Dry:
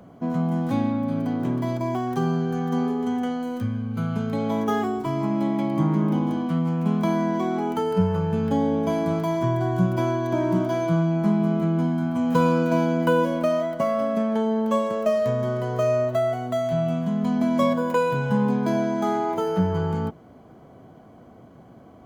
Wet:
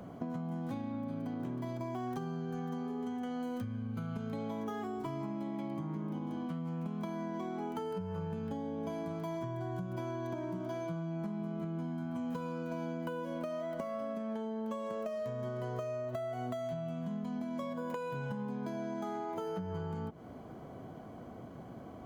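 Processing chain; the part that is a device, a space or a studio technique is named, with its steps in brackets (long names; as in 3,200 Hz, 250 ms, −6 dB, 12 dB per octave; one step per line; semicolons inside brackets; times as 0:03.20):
serial compression, peaks first (downward compressor, threshold −31 dBFS, peak gain reduction 15 dB; downward compressor, threshold −35 dBFS, peak gain reduction 7.5 dB)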